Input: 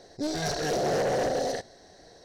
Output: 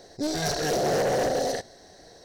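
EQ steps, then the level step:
high-shelf EQ 11,000 Hz +10.5 dB
+2.0 dB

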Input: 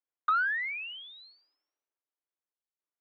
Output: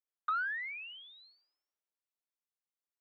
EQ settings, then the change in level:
high-pass filter 310 Hz
−6.5 dB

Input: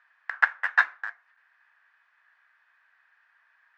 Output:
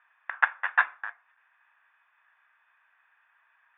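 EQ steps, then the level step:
Chebyshev low-pass with heavy ripple 3,600 Hz, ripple 6 dB
+3.0 dB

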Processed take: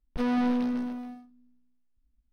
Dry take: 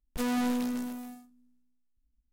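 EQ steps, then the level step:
Savitzky-Golay smoothing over 15 samples
high-shelf EQ 2,300 Hz −8.5 dB
+3.5 dB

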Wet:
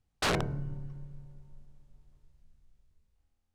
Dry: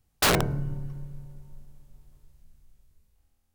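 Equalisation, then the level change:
high-frequency loss of the air 57 metres
−6.0 dB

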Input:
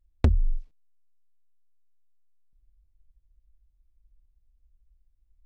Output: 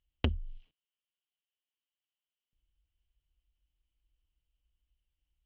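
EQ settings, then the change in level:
high-pass filter 110 Hz 6 dB per octave
low-pass with resonance 3,000 Hz, resonance Q 11
−5.5 dB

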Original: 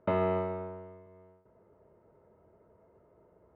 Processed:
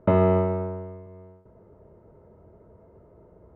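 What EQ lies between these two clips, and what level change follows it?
spectral tilt −2.5 dB per octave
+6.0 dB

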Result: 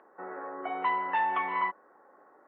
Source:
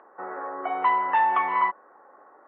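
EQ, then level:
parametric band 950 Hz −7 dB 2.3 octaves
notch filter 1,200 Hz, Q 24
0.0 dB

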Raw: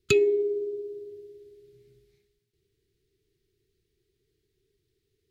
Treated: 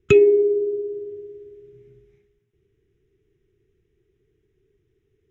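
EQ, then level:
moving average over 10 samples
+8.5 dB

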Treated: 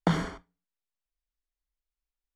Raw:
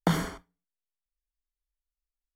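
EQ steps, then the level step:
high-frequency loss of the air 75 metres
0.0 dB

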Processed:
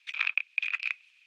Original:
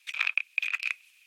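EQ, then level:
high-pass filter 790 Hz 6 dB per octave
low-pass filter 4,100 Hz 12 dB per octave
0.0 dB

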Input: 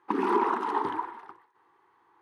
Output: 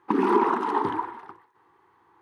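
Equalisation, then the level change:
low-shelf EQ 210 Hz +10.5 dB
+2.5 dB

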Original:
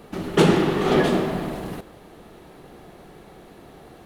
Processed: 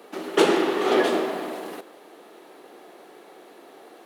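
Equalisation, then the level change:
high-pass filter 300 Hz 24 dB per octave
0.0 dB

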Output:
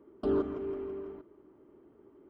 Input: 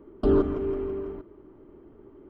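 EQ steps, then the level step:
high-pass filter 180 Hz 6 dB per octave
−6.5 dB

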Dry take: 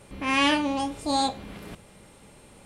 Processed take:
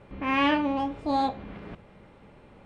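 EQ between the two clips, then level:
low-pass filter 2,200 Hz 12 dB per octave
0.0 dB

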